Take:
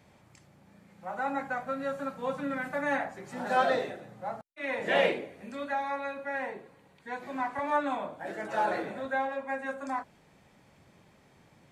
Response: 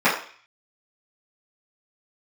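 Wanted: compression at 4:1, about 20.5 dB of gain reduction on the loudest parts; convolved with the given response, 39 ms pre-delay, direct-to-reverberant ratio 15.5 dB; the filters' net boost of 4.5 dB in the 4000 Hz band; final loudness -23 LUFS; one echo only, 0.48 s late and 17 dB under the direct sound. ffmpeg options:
-filter_complex "[0:a]equalizer=f=4k:t=o:g=6,acompressor=threshold=-46dB:ratio=4,aecho=1:1:480:0.141,asplit=2[a][b];[1:a]atrim=start_sample=2205,adelay=39[c];[b][c]afir=irnorm=-1:irlink=0,volume=-37dB[d];[a][d]amix=inputs=2:normalize=0,volume=23.5dB"

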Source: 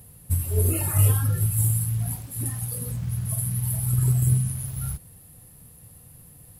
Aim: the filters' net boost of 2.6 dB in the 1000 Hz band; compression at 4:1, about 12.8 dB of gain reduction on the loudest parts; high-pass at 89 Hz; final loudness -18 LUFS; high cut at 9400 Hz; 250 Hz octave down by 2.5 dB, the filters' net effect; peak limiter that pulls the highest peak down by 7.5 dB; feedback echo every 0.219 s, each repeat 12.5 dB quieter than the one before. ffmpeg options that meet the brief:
-af "highpass=89,lowpass=9.4k,equalizer=f=250:t=o:g=-5,equalizer=f=1k:t=o:g=3.5,acompressor=threshold=-33dB:ratio=4,alimiter=level_in=6dB:limit=-24dB:level=0:latency=1,volume=-6dB,aecho=1:1:219|438|657:0.237|0.0569|0.0137,volume=20dB"

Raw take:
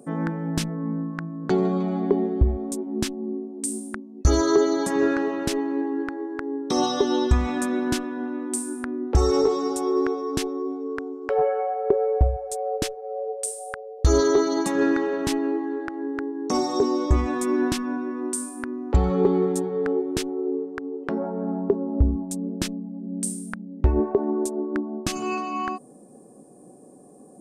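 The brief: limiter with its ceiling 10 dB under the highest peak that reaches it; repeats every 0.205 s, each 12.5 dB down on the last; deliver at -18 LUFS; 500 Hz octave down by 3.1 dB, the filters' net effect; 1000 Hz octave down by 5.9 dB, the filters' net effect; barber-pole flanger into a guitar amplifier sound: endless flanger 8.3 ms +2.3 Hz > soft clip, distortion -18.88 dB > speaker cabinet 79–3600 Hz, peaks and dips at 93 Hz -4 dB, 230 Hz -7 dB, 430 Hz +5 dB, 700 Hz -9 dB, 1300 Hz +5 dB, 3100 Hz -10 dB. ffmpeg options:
-filter_complex "[0:a]equalizer=f=500:t=o:g=-7,equalizer=f=1k:t=o:g=-4.5,alimiter=limit=-18dB:level=0:latency=1,aecho=1:1:205|410|615:0.237|0.0569|0.0137,asplit=2[a][b];[b]adelay=8.3,afreqshift=2.3[c];[a][c]amix=inputs=2:normalize=1,asoftclip=threshold=-22.5dB,highpass=79,equalizer=f=93:t=q:w=4:g=-4,equalizer=f=230:t=q:w=4:g=-7,equalizer=f=430:t=q:w=4:g=5,equalizer=f=700:t=q:w=4:g=-9,equalizer=f=1.3k:t=q:w=4:g=5,equalizer=f=3.1k:t=q:w=4:g=-10,lowpass=f=3.6k:w=0.5412,lowpass=f=3.6k:w=1.3066,volume=16dB"

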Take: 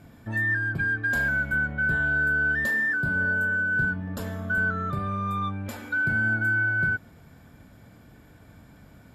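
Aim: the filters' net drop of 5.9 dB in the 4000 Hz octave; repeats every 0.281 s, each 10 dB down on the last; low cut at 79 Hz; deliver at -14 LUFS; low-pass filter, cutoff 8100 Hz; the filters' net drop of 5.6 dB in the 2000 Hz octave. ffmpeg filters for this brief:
-af "highpass=79,lowpass=8.1k,equalizer=f=2k:t=o:g=-8,equalizer=f=4k:t=o:g=-4.5,aecho=1:1:281|562|843|1124:0.316|0.101|0.0324|0.0104,volume=15dB"

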